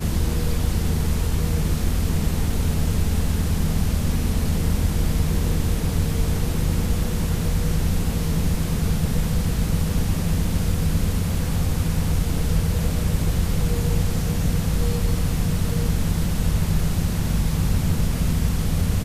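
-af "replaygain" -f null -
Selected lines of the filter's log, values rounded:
track_gain = +10.4 dB
track_peak = 0.266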